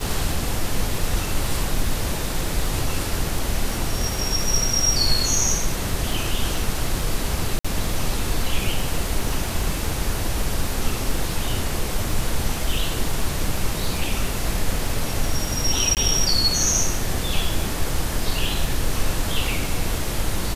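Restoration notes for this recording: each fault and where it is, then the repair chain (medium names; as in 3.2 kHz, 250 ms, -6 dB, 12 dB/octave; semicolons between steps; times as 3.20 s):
crackle 25 per s -26 dBFS
7.59–7.64 s: dropout 55 ms
15.95–15.97 s: dropout 18 ms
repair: de-click; interpolate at 7.59 s, 55 ms; interpolate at 15.95 s, 18 ms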